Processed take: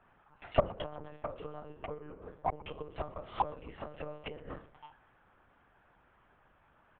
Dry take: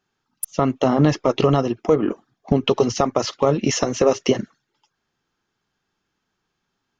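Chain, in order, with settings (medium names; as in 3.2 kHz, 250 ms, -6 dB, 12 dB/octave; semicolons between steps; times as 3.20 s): spectral sustain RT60 0.31 s; compression 6:1, threshold -22 dBFS, peak gain reduction 11.5 dB; three-band isolator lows -18 dB, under 350 Hz, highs -22 dB, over 2.4 kHz; level-controlled noise filter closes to 2.7 kHz; peaking EQ 1.6 kHz -2.5 dB 1.2 oct; inverted gate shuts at -28 dBFS, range -28 dB; de-hum 50.76 Hz, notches 12; on a send: frequency-shifting echo 127 ms, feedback 59%, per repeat +110 Hz, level -22.5 dB; on the sum: monotone LPC vocoder at 8 kHz 150 Hz; trim +14.5 dB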